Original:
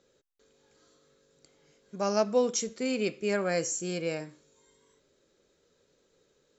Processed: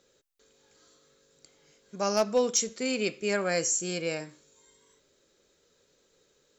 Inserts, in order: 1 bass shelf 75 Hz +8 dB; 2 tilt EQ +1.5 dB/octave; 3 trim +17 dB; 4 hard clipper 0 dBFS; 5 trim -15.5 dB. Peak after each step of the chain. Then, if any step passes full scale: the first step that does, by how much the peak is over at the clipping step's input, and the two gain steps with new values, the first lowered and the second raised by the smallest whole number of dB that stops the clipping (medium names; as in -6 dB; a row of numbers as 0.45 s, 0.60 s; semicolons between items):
-14.0 dBFS, -13.0 dBFS, +4.0 dBFS, 0.0 dBFS, -15.5 dBFS; step 3, 4.0 dB; step 3 +13 dB, step 5 -11.5 dB